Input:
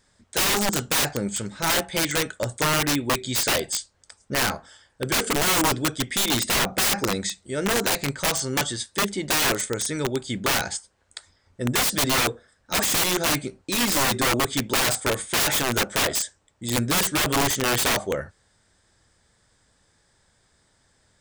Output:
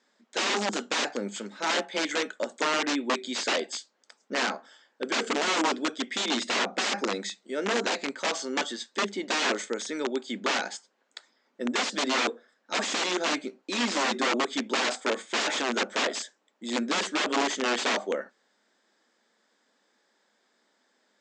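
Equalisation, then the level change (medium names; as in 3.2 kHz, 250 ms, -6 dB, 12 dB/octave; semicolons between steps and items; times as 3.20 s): elliptic high-pass 220 Hz, stop band 50 dB; Chebyshev low-pass 7.4 kHz, order 4; distance through air 68 m; -1.5 dB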